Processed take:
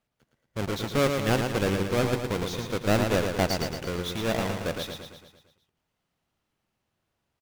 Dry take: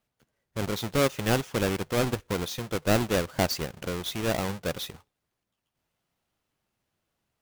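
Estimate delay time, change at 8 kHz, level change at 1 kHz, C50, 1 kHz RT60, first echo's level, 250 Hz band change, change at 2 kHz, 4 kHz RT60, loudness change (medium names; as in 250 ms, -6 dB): 113 ms, -2.0 dB, +1.5 dB, no reverb, no reverb, -5.5 dB, +1.5 dB, +1.0 dB, no reverb, +1.0 dB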